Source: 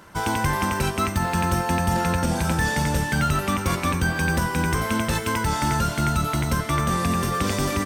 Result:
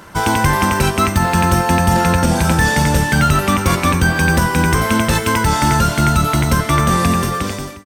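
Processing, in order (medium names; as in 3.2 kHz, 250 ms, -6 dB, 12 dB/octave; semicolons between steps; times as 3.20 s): fade out at the end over 0.80 s; trim +8.5 dB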